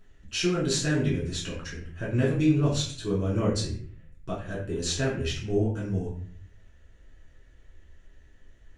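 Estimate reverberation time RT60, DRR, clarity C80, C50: 0.50 s, -7.0 dB, 8.5 dB, 4.5 dB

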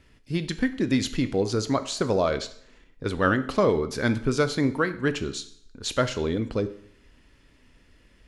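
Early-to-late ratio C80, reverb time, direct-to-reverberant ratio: 17.5 dB, 0.65 s, 10.0 dB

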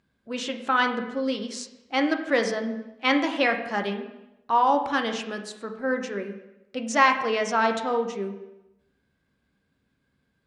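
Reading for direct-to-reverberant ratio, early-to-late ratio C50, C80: 4.5 dB, 8.5 dB, 11.0 dB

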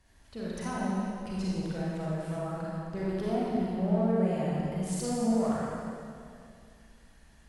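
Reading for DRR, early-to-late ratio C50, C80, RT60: -7.0 dB, -4.5 dB, -2.0 dB, 2.3 s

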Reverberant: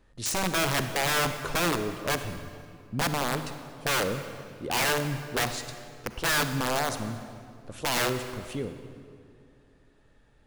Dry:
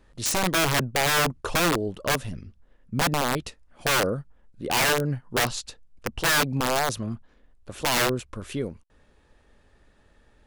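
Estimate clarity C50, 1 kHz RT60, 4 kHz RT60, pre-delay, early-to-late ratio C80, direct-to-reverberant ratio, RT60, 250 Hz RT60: 9.0 dB, 2.1 s, 1.7 s, 39 ms, 10.0 dB, 8.5 dB, 2.3 s, 2.9 s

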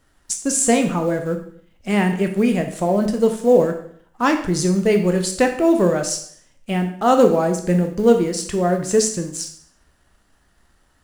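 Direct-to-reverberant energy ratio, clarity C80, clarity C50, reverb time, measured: 5.0 dB, 12.5 dB, 9.0 dB, 0.60 s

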